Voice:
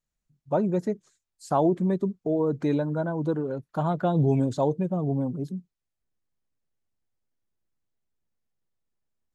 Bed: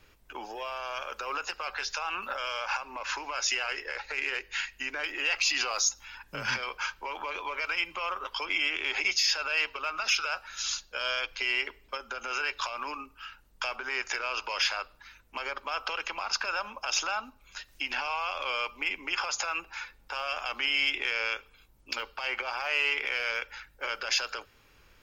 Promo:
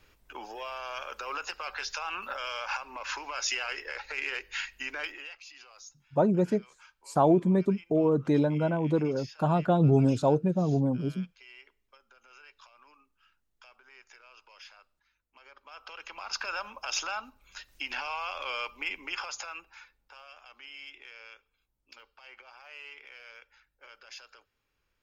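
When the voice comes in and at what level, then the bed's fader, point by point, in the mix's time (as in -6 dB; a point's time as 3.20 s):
5.65 s, +0.5 dB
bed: 5.04 s -2 dB
5.41 s -23 dB
15.31 s -23 dB
16.43 s -3 dB
19.02 s -3 dB
20.36 s -19 dB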